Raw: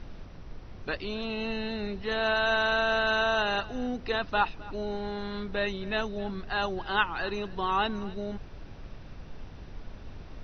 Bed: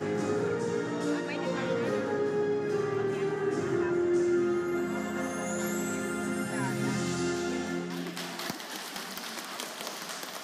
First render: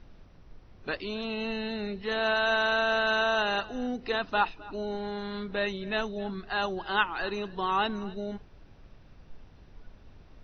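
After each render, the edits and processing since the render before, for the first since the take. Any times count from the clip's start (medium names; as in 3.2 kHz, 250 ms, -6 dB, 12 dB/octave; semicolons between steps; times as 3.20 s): noise print and reduce 9 dB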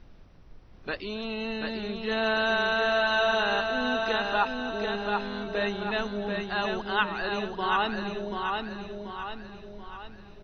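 feedback delay 735 ms, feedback 47%, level -4 dB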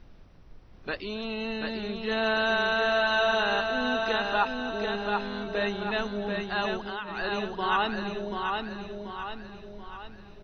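6.76–7.17 s: compression, threshold -31 dBFS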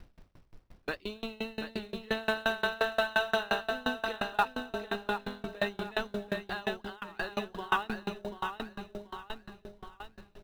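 in parallel at -11 dB: companded quantiser 4-bit; on the sum: sawtooth tremolo in dB decaying 5.7 Hz, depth 28 dB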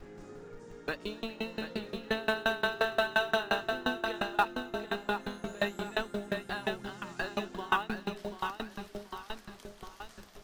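add bed -19 dB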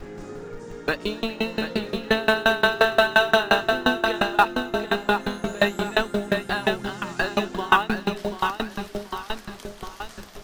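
trim +11 dB; peak limiter -2 dBFS, peak gain reduction 2 dB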